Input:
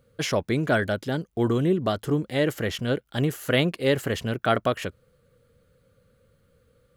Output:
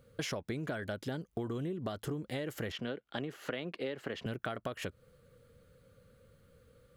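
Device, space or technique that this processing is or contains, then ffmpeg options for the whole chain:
serial compression, leveller first: -filter_complex "[0:a]asettb=1/sr,asplit=3[link_01][link_02][link_03];[link_01]atrim=end=2.724[link_04];[link_02]atrim=start=2.72:end=4.26,asetpts=PTS-STARTPTS,afade=type=in:duration=0.004:curve=qsin,afade=type=out:start_time=1.536:duration=0.004:curve=qsin,acrossover=split=180 4800:gain=0.2 1 0.126[link_05][link_06][link_07];[link_05][link_06][link_07]amix=inputs=3:normalize=0[link_08];[link_03]atrim=start=4.256[link_09];[link_04][link_08]acrossfade=duration=0.004:curve1=hsin:curve2=qsin[link_10];[link_10][link_09]acrossfade=duration=0.004:curve1=qsin:curve2=hsin,acompressor=threshold=-24dB:ratio=3,acompressor=threshold=-35dB:ratio=6"

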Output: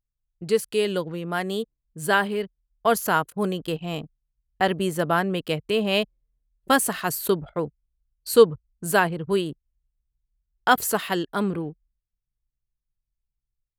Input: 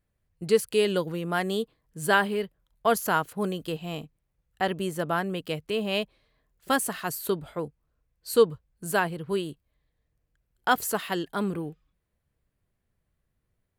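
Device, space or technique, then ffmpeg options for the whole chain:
voice memo with heavy noise removal: -af "anlmdn=0.0631,dynaudnorm=framelen=720:gausssize=9:maxgain=7dB"

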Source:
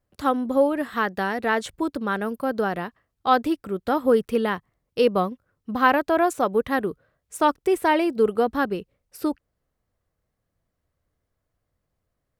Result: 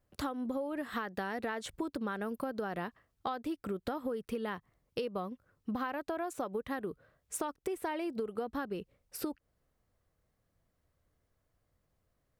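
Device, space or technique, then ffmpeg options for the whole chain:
serial compression, peaks first: -af "acompressor=threshold=-28dB:ratio=6,acompressor=threshold=-35dB:ratio=2.5"

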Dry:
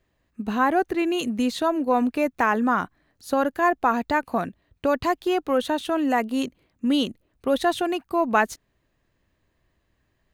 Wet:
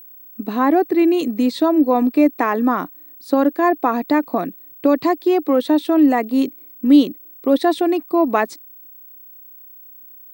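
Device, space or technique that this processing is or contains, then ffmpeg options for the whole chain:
old television with a line whistle: -af "highpass=frequency=170:width=0.5412,highpass=frequency=170:width=1.3066,equalizer=frequency=210:width_type=q:width=4:gain=-5,equalizer=frequency=300:width_type=q:width=4:gain=9,equalizer=frequency=880:width_type=q:width=4:gain=-4,equalizer=frequency=1500:width_type=q:width=4:gain=-9,equalizer=frequency=2900:width_type=q:width=4:gain=-9,equalizer=frequency=6600:width_type=q:width=4:gain=-10,lowpass=frequency=8700:width=0.5412,lowpass=frequency=8700:width=1.3066,aeval=exprs='val(0)+0.00631*sin(2*PI*15734*n/s)':channel_layout=same,volume=5dB"

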